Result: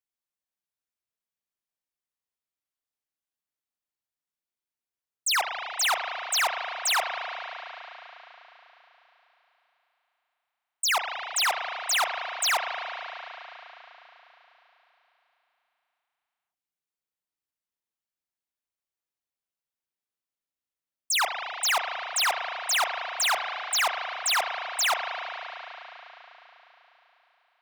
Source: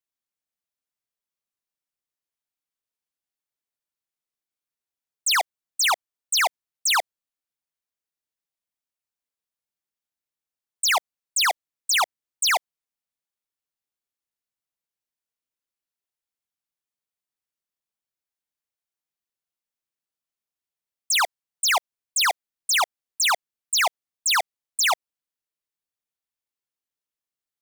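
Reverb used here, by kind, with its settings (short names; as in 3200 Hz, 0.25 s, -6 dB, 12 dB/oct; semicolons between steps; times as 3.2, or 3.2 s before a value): spring tank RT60 4 s, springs 35 ms, chirp 55 ms, DRR 3 dB; gain -4 dB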